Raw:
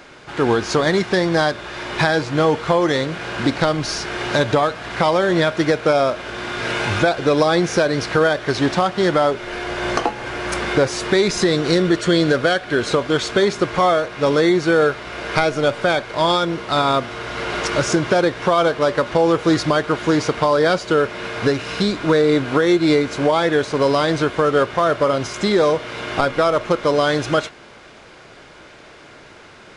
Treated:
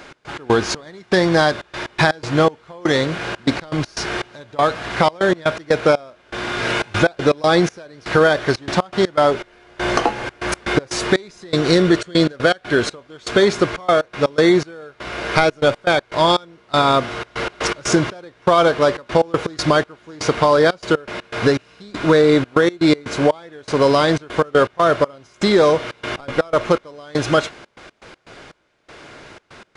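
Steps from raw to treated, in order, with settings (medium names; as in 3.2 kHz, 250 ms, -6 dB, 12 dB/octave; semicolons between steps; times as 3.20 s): trance gate "x.x.xx...xxxx." 121 bpm -24 dB; trim +2.5 dB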